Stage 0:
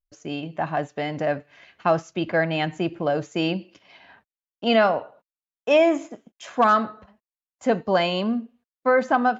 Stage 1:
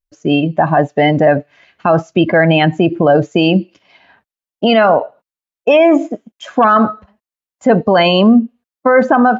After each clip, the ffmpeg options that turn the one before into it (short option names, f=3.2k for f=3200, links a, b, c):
-af "afftdn=nr=16:nf=-31,alimiter=level_in=19dB:limit=-1dB:release=50:level=0:latency=1,volume=-1dB"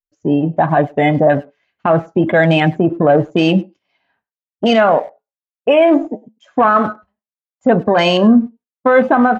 -filter_complex "[0:a]afwtdn=0.0794,flanger=delay=6.7:depth=1.4:regen=-76:speed=0.3:shape=sinusoidal,asplit=2[a][b];[b]adelay=100,highpass=300,lowpass=3.4k,asoftclip=type=hard:threshold=-14dB,volume=-23dB[c];[a][c]amix=inputs=2:normalize=0,volume=3dB"